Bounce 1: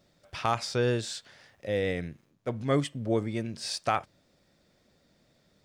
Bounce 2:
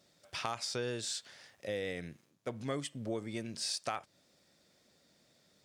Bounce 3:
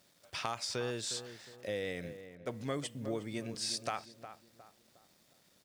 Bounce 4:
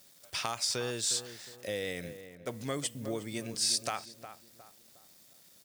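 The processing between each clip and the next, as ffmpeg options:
-af "highpass=f=160:p=1,equalizer=f=8900:w=0.38:g=7.5,acompressor=threshold=0.0251:ratio=3,volume=0.708"
-filter_complex "[0:a]acrusher=bits=10:mix=0:aa=0.000001,asplit=2[s0][s1];[s1]adelay=360,lowpass=f=1700:p=1,volume=0.282,asplit=2[s2][s3];[s3]adelay=360,lowpass=f=1700:p=1,volume=0.39,asplit=2[s4][s5];[s5]adelay=360,lowpass=f=1700:p=1,volume=0.39,asplit=2[s6][s7];[s7]adelay=360,lowpass=f=1700:p=1,volume=0.39[s8];[s0][s2][s4][s6][s8]amix=inputs=5:normalize=0"
-af "crystalizer=i=2:c=0,volume=1.12"

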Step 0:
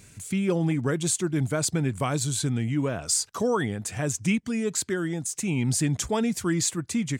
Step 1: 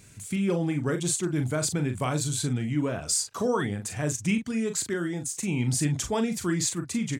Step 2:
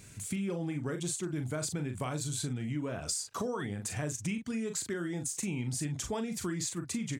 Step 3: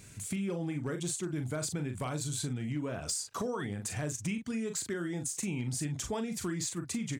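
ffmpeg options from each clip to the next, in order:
-filter_complex "[0:a]asplit=2[s0][s1];[s1]adelay=40,volume=0.422[s2];[s0][s2]amix=inputs=2:normalize=0,volume=0.794"
-af "acompressor=threshold=0.0251:ratio=6"
-af "asoftclip=type=hard:threshold=0.0473"

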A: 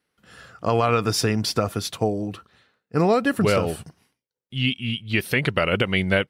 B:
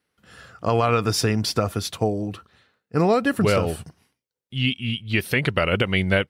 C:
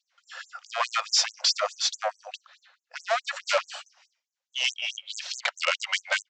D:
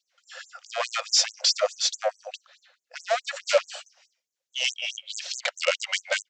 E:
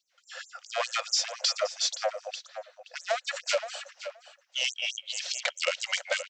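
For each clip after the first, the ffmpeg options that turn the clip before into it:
-af "equalizer=f=82:w=2.3:g=4.5"
-af "aresample=16000,asoftclip=type=tanh:threshold=0.0794,aresample=44100,afftfilt=real='re*gte(b*sr/1024,480*pow(6200/480,0.5+0.5*sin(2*PI*4.7*pts/sr)))':imag='im*gte(b*sr/1024,480*pow(6200/480,0.5+0.5*sin(2*PI*4.7*pts/sr)))':win_size=1024:overlap=0.75,volume=2.24"
-af "equalizer=f=500:t=o:w=1:g=10,equalizer=f=1000:t=o:w=1:g=-8,equalizer=f=8000:t=o:w=1:g=4"
-filter_complex "[0:a]acompressor=threshold=0.0631:ratio=6,asplit=2[s0][s1];[s1]adelay=523,lowpass=f=3300:p=1,volume=0.299,asplit=2[s2][s3];[s3]adelay=523,lowpass=f=3300:p=1,volume=0.15[s4];[s0][s2][s4]amix=inputs=3:normalize=0"

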